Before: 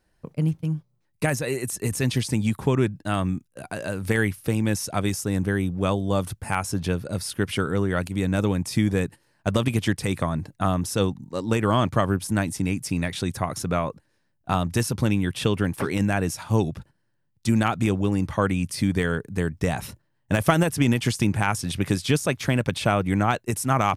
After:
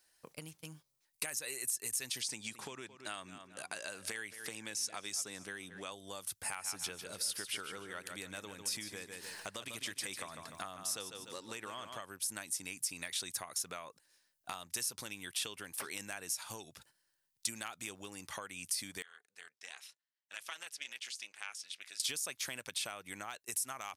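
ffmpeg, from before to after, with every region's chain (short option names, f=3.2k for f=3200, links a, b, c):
-filter_complex "[0:a]asettb=1/sr,asplit=3[a][b][c];[a]atrim=end=2.224[d];[b]atrim=start=2.22:end=5.92,asetpts=PTS-STARTPTS,afade=t=in:d=0.004:c=qsin,afade=t=out:st=3.696:d=0.004:c=qsin,highpass=100,lowpass=7.8k,asplit=2[e][f];[f]adelay=220,lowpass=f=3.6k:p=1,volume=-16dB,asplit=2[g][h];[h]adelay=220,lowpass=f=3.6k:p=1,volume=0.39,asplit=2[i][j];[j]adelay=220,lowpass=f=3.6k:p=1,volume=0.39[k];[e][g][i][k]amix=inputs=4:normalize=0,atrim=end_sample=163170[l];[c]atrim=start=5.916[m];[d][l]acrossfade=d=0.004:c1=hsin:c2=qsin[n];[n][m]acrossfade=d=0.004:c1=qsin:c2=hsin,asettb=1/sr,asplit=3[o][p][q];[o]atrim=end=6.424[r];[p]atrim=start=6.42:end=12.02,asetpts=PTS-STARTPTS,afade=t=in:d=0.004:c=qsin,afade=t=out:st=5.596:d=0.004:c=qsin,highshelf=f=5.1k:g=-6.5,acompressor=mode=upward:threshold=-25dB:ratio=2.5:attack=3.2:release=140:knee=2.83:detection=peak,aecho=1:1:148|296|444|592:0.376|0.117|0.0361|0.0112,atrim=end_sample=246960[s];[q]atrim=start=12.016[t];[r][s]acrossfade=d=0.004:c1=hsin:c2=qsin[u];[u][t]acrossfade=d=0.004:c1=qsin:c2=hsin,asettb=1/sr,asplit=3[v][w][x];[v]atrim=end=19.024[y];[w]atrim=start=19.02:end=22,asetpts=PTS-STARTPTS,afade=t=in:d=0.004:c=qsin,afade=t=out:st=2.976:d=0.004:c=qsin,aderivative,tremolo=f=300:d=0.788,highpass=100,lowpass=2.9k[z];[x]atrim=start=21.996[aa];[y][z]acrossfade=d=0.004:c1=hsin:c2=qsin[ab];[ab][aa]acrossfade=d=0.004:c1=qsin:c2=hsin,bass=f=250:g=-12,treble=f=4k:g=7,acompressor=threshold=-34dB:ratio=12,tiltshelf=f=1.1k:g=-7.5,volume=-5.5dB"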